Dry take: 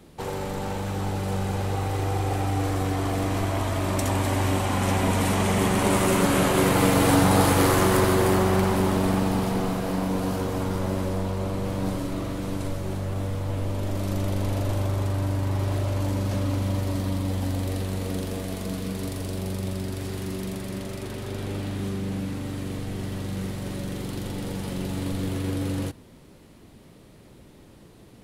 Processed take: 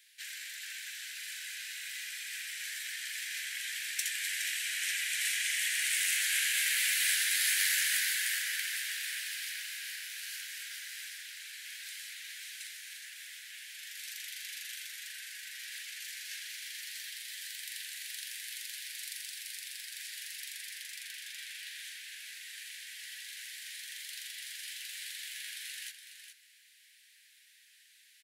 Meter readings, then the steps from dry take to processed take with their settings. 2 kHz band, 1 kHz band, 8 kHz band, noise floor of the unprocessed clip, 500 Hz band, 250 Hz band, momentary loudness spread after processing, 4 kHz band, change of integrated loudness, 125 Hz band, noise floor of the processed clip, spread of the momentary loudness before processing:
−1.0 dB, −33.0 dB, +0.5 dB, −50 dBFS, below −40 dB, below −40 dB, 16 LU, +0.5 dB, −9.0 dB, below −40 dB, −62 dBFS, 12 LU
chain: Butterworth high-pass 1,600 Hz 96 dB per octave
single-tap delay 416 ms −9 dB
soft clipping −14.5 dBFS, distortion −32 dB

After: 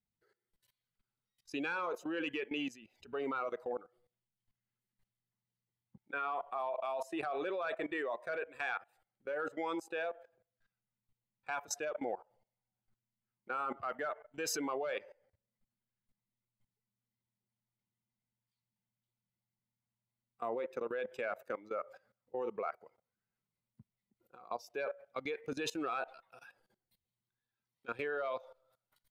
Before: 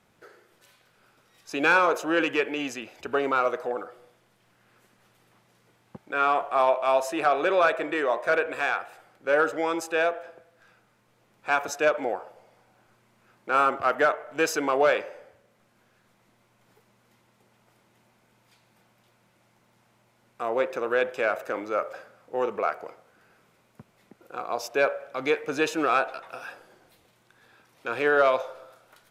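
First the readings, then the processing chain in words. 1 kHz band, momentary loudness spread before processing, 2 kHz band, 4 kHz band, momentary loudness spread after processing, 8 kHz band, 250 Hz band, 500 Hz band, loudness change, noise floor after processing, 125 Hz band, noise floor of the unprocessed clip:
−14.5 dB, 14 LU, −15.0 dB, −11.0 dB, 8 LU, −6.5 dB, −10.0 dB, −14.0 dB, −13.5 dB, below −85 dBFS, −11.0 dB, −65 dBFS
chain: spectral dynamics exaggerated over time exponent 1.5
output level in coarse steps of 19 dB
level +1.5 dB

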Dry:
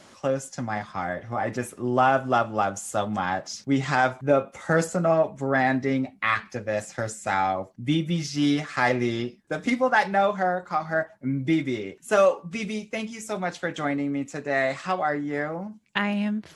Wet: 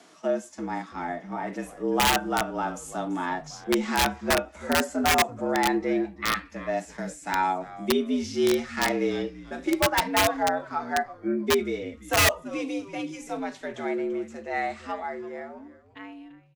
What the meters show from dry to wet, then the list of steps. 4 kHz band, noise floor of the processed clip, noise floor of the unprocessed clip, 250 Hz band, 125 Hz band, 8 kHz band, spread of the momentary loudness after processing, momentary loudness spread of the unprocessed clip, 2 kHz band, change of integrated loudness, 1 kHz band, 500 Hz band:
+6.0 dB, −51 dBFS, −54 dBFS, −2.0 dB, −8.5 dB, +6.0 dB, 13 LU, 9 LU, −1.5 dB, −1.0 dB, −2.0 dB, −2.5 dB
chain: fade-out on the ending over 2.94 s
frequency shifter +81 Hz
echo with shifted repeats 337 ms, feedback 32%, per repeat −140 Hz, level −17.5 dB
harmonic and percussive parts rebalanced percussive −10 dB
wrap-around overflow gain 14.5 dB

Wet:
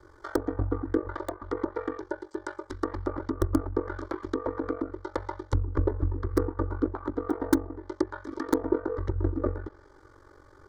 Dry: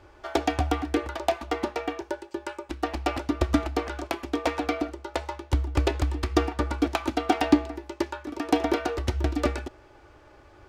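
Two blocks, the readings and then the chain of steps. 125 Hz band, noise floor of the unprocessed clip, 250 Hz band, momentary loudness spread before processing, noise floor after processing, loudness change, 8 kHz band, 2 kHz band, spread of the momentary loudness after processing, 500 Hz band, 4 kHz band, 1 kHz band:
−1.0 dB, −53 dBFS, −2.5 dB, 9 LU, −55 dBFS, −3.0 dB, −7.5 dB, −8.0 dB, 9 LU, −2.0 dB, −15.0 dB, −7.5 dB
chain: treble cut that deepens with the level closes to 840 Hz, closed at −23 dBFS
mains-hum notches 50/100/150 Hz
in parallel at −6 dB: wrap-around overflow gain 10.5 dB
on the sum: phaser with its sweep stopped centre 710 Hz, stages 6
ring modulation 23 Hz

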